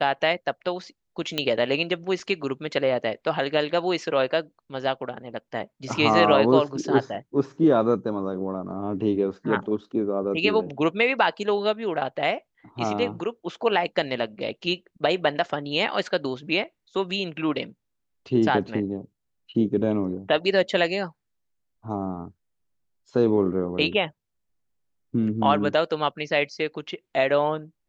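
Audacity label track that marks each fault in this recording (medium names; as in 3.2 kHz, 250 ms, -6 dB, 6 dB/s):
1.380000	1.380000	pop -11 dBFS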